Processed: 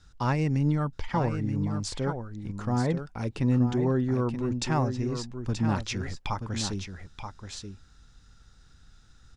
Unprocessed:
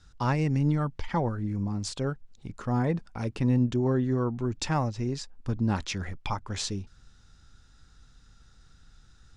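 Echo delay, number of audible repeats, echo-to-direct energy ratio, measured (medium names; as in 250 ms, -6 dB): 929 ms, 1, -8.0 dB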